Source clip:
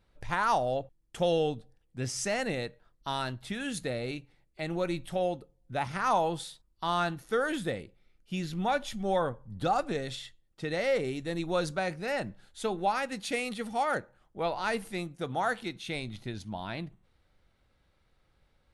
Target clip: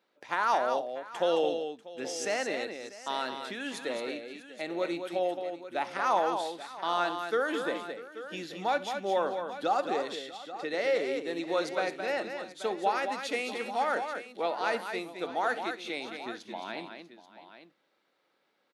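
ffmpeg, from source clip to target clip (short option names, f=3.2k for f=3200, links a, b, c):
-filter_complex "[0:a]highpass=f=270:w=0.5412,highpass=f=270:w=1.3066,equalizer=f=9.5k:w=1.5:g=-8,asplit=2[a][b];[b]aecho=0:1:65|217|642|834:0.126|0.447|0.126|0.211[c];[a][c]amix=inputs=2:normalize=0"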